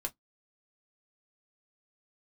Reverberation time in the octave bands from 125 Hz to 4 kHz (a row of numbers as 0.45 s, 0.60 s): 0.10 s, 0.15 s, 0.10 s, 0.10 s, 0.10 s, 0.10 s